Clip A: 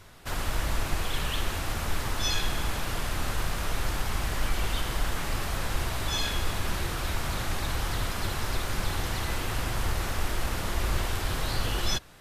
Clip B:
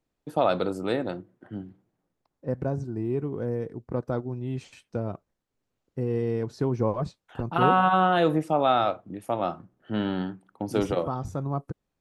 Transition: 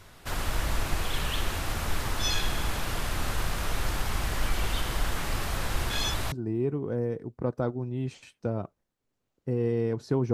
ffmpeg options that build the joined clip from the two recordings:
ffmpeg -i cue0.wav -i cue1.wav -filter_complex "[0:a]apad=whole_dur=10.33,atrim=end=10.33,asplit=2[link_01][link_02];[link_01]atrim=end=5.902[link_03];[link_02]atrim=start=5.898:end=6.322,asetpts=PTS-STARTPTS,areverse[link_04];[1:a]atrim=start=2.818:end=6.83[link_05];[link_03][link_04]acrossfade=duration=0.004:curve1=hsin:curve2=hsin[link_06];[link_06][link_05]acrossfade=duration=0.004:curve1=hsin:curve2=hsin" out.wav

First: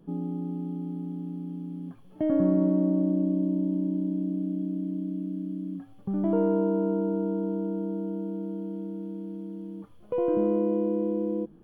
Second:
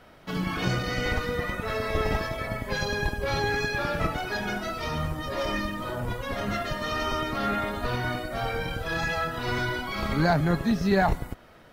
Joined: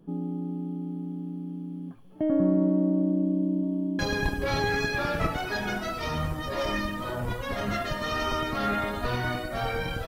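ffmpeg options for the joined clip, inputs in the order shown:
ffmpeg -i cue0.wav -i cue1.wav -filter_complex "[0:a]apad=whole_dur=10.07,atrim=end=10.07,atrim=end=3.992[link_01];[1:a]atrim=start=2.788:end=8.87[link_02];[link_01][link_02]acrossfade=duration=0.004:curve1=hsin:curve2=hsin,asplit=2[link_03][link_04];[link_04]afade=type=in:start_time=3.19:duration=0.01,afade=type=out:start_time=3.99:duration=0.01,aecho=0:1:430|860|1290|1720|2150|2580|3010|3440:0.375837|0.225502|0.135301|0.0811809|0.0487085|0.0292251|0.0175351|0.010521[link_05];[link_03][link_05]amix=inputs=2:normalize=0" out.wav

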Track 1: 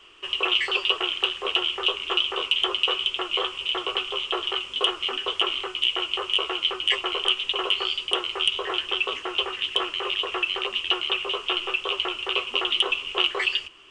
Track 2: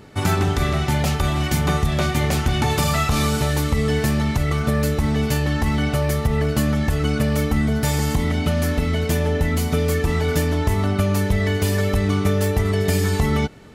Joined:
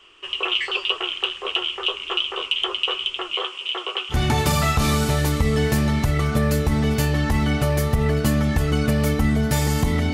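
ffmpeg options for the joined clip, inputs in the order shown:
ffmpeg -i cue0.wav -i cue1.wav -filter_complex "[0:a]asettb=1/sr,asplit=3[link_01][link_02][link_03];[link_01]atrim=end=3.324[link_04];[link_02]atrim=start=3.32:end=4.17,asetpts=PTS-STARTPTS,afade=type=in:duration=0.004:curve=qsin,afade=type=out:start_time=0.846:duration=0.004:curve=qsin,highpass=290[link_05];[link_03]atrim=start=4.166[link_06];[link_04][link_05]acrossfade=duration=0.004:curve1=hsin:curve2=qsin[link_07];[link_07][link_06]acrossfade=duration=0.004:curve1=qsin:curve2=hsin,apad=whole_dur=10.13,atrim=end=10.13,atrim=end=4.17,asetpts=PTS-STARTPTS[link_08];[1:a]atrim=start=2.41:end=8.45,asetpts=PTS-STARTPTS[link_09];[link_08][link_09]acrossfade=duration=0.08:curve1=tri:curve2=tri" out.wav

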